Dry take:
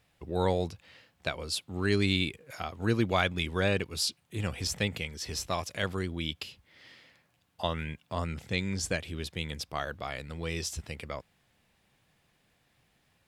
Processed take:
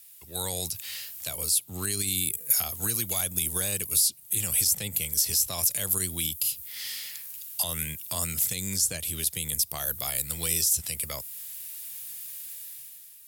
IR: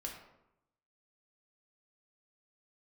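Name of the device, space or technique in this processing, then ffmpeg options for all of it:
FM broadcast chain: -filter_complex "[0:a]highpass=78,equalizer=f=330:w=0.4:g=-13,dynaudnorm=f=110:g=11:m=11.5dB,acrossover=split=120|760|7700[a][b][c][d];[a]acompressor=threshold=-40dB:ratio=4[e];[b]acompressor=threshold=-32dB:ratio=4[f];[c]acompressor=threshold=-44dB:ratio=4[g];[d]acompressor=threshold=-49dB:ratio=4[h];[e][f][g][h]amix=inputs=4:normalize=0,aemphasis=mode=production:type=75fm,alimiter=limit=-24dB:level=0:latency=1:release=50,asoftclip=type=hard:threshold=-25.5dB,lowpass=f=15k:w=0.5412,lowpass=f=15k:w=1.3066,aemphasis=mode=production:type=75fm"

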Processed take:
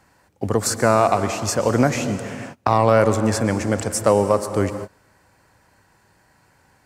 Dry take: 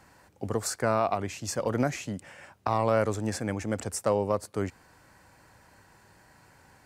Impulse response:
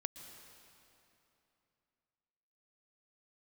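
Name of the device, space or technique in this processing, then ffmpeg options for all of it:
keyed gated reverb: -filter_complex "[0:a]asplit=3[a][b][c];[1:a]atrim=start_sample=2205[d];[b][d]afir=irnorm=-1:irlink=0[e];[c]apad=whole_len=302101[f];[e][f]sidechaingate=range=-31dB:threshold=-50dB:ratio=16:detection=peak,volume=10dB[g];[a][g]amix=inputs=2:normalize=0,volume=-1dB"

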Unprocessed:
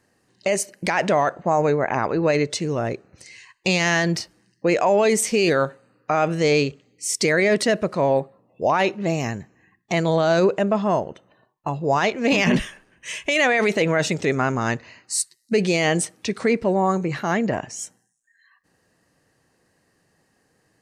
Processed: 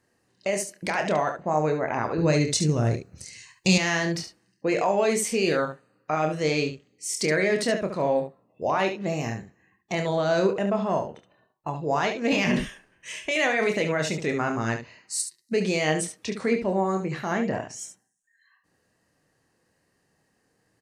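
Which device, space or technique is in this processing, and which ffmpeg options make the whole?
slapback doubling: -filter_complex "[0:a]asplit=3[a][b][c];[b]adelay=26,volume=-7dB[d];[c]adelay=71,volume=-8dB[e];[a][d][e]amix=inputs=3:normalize=0,asettb=1/sr,asplit=3[f][g][h];[f]atrim=end=2.184[i];[g]atrim=start=2.18:end=3.78,asetpts=PTS-STARTPTS,afade=t=in:d=0.004:c=qsin,afade=t=out:st=1.596:d=0.004:c=qsin,bass=f=250:g=11,treble=f=4k:g=11[j];[h]atrim=start=3.776[k];[i][j]acrossfade=d=0.004:c1=hsin:c2=qsin[l];[l][k]acrossfade=d=0.004:c1=qsin:c2=hsin,volume=-6dB"

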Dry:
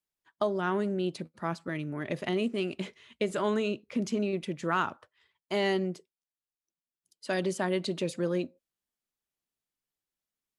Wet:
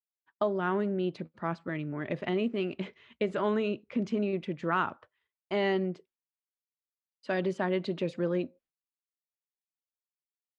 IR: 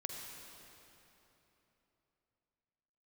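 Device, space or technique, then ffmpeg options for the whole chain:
hearing-loss simulation: -af "lowpass=2.9k,agate=range=-33dB:threshold=-59dB:ratio=3:detection=peak"

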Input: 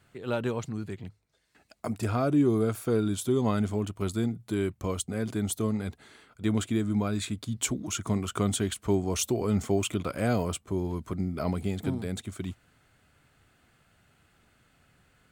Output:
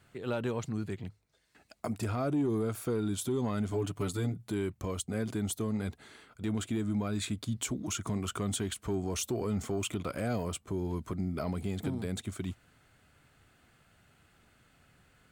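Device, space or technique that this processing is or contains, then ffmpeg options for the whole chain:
soft clipper into limiter: -filter_complex "[0:a]asoftclip=type=tanh:threshold=-16dB,alimiter=limit=-24dB:level=0:latency=1:release=170,asettb=1/sr,asplit=3[a][b][c];[a]atrim=end=3.714[d];[b]atrim=start=3.71:end=4.34,asetpts=PTS-STARTPTS,afade=t=in:d=0.004:c=qsin,afade=t=out:st=0.626:d=0.004:c=qsin,aecho=1:1:6.9:0.95,atrim=end_sample=27783[e];[c]atrim=start=4.336[f];[d][e]acrossfade=d=0.004:c1=hsin:c2=qsin[g];[g][f]acrossfade=d=0.004:c1=qsin:c2=hsin"

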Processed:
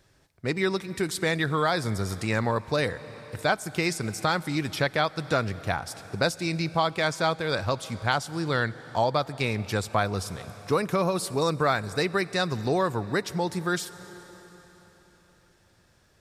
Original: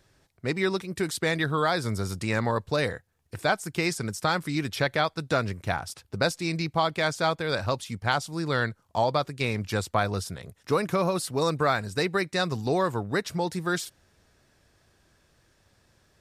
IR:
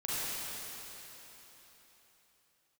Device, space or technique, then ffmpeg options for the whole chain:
ducked reverb: -filter_complex "[0:a]asplit=3[a][b][c];[1:a]atrim=start_sample=2205[d];[b][d]afir=irnorm=-1:irlink=0[e];[c]apad=whole_len=714468[f];[e][f]sidechaincompress=threshold=-27dB:ratio=8:attack=7.8:release=453,volume=-18.5dB[g];[a][g]amix=inputs=2:normalize=0"

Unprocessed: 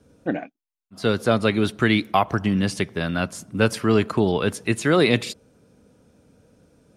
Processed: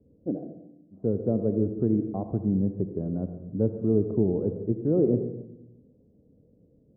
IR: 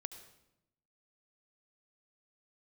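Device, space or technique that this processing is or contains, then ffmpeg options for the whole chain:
next room: -filter_complex "[0:a]lowpass=f=500:w=0.5412,lowpass=f=500:w=1.3066[a];[1:a]atrim=start_sample=2205[b];[a][b]afir=irnorm=-1:irlink=0"

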